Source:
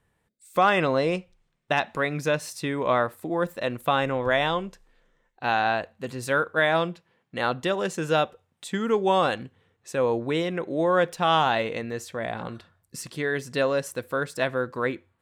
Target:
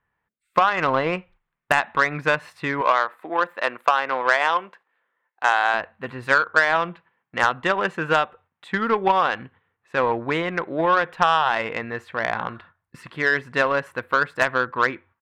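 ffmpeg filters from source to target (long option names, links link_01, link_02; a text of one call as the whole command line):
ffmpeg -i in.wav -filter_complex "[0:a]firequalizer=gain_entry='entry(530,0);entry(970,10);entry(1700,8);entry(5700,-23)':delay=0.05:min_phase=1,acompressor=threshold=-17dB:ratio=16,highshelf=frequency=2700:gain=6.5,aeval=exprs='0.668*(cos(1*acos(clip(val(0)/0.668,-1,1)))-cos(1*PI/2))+0.0531*(cos(4*acos(clip(val(0)/0.668,-1,1)))-cos(4*PI/2))+0.075*(cos(5*acos(clip(val(0)/0.668,-1,1)))-cos(5*PI/2))+0.0211*(cos(6*acos(clip(val(0)/0.668,-1,1)))-cos(6*PI/2))+0.0841*(cos(7*acos(clip(val(0)/0.668,-1,1)))-cos(7*PI/2))':channel_layout=same,asettb=1/sr,asplit=3[link_01][link_02][link_03];[link_01]atrim=end=2.814[link_04];[link_02]atrim=start=2.81:end=5.74,asetpts=PTS-STARTPTS,afade=type=in:duration=0.004:curve=qsin,afade=type=out:start_time=2.926:duration=0.004:curve=qsin,highpass=380[link_05];[link_03]atrim=start=5.736[link_06];[link_04][link_05]acrossfade=duration=0.004:curve1=hsin:curve2=qsin[link_07];[link_07][link_06]acrossfade=duration=0.004:curve1=qsin:curve2=hsin,agate=range=-9dB:threshold=-52dB:ratio=16:detection=peak,volume=2.5dB" out.wav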